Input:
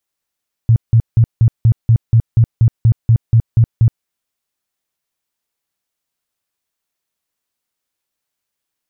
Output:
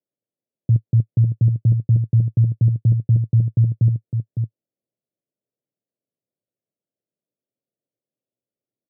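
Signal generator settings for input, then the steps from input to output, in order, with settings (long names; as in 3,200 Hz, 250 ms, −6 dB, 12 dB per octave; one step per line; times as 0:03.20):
tone bursts 114 Hz, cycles 8, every 0.24 s, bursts 14, −5.5 dBFS
elliptic band-pass filter 110–590 Hz, stop band 40 dB
brickwall limiter −9.5 dBFS
on a send: single-tap delay 558 ms −7 dB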